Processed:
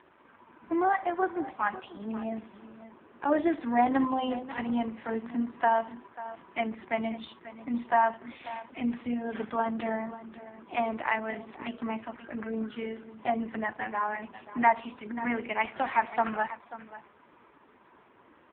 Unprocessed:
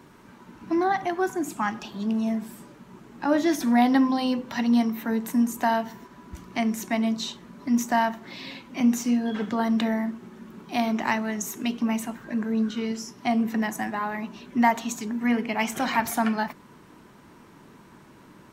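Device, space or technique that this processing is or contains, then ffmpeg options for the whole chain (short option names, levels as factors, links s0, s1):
satellite phone: -af "highpass=390,lowpass=3200,aecho=1:1:539:0.178" -ar 8000 -c:a libopencore_amrnb -b:a 4750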